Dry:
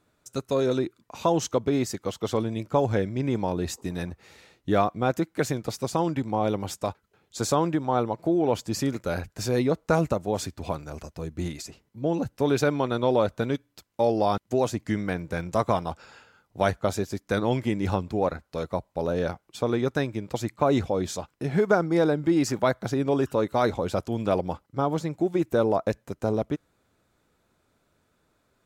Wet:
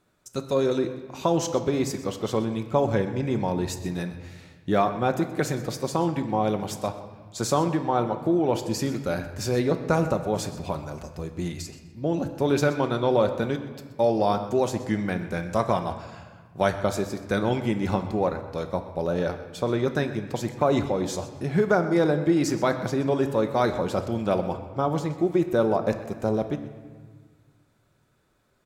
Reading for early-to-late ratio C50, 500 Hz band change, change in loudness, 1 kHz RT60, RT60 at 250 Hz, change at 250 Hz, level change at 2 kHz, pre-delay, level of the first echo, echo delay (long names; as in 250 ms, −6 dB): 9.5 dB, +1.0 dB, +1.0 dB, 1.5 s, 2.1 s, +1.0 dB, +1.0 dB, 5 ms, −17.0 dB, 126 ms